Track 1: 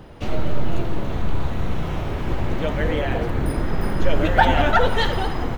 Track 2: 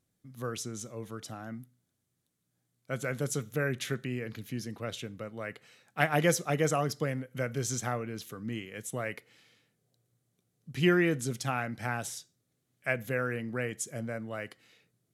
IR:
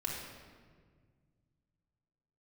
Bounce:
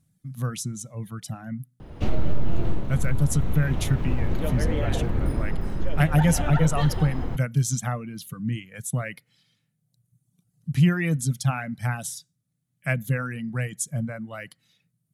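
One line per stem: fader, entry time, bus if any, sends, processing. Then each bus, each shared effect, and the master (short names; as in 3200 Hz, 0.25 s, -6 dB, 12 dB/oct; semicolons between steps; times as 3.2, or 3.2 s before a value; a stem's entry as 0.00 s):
+2.0 dB, 1.80 s, no send, low shelf 340 Hz +8.5 dB; AGC; auto duck -12 dB, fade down 0.20 s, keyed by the second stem
+3.0 dB, 0.00 s, no send, fifteen-band EQ 160 Hz +10 dB, 400 Hz -11 dB, 10000 Hz +7 dB; reverb removal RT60 1.4 s; low shelf 220 Hz +9.5 dB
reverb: off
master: compressor 4:1, threshold -15 dBFS, peak gain reduction 11.5 dB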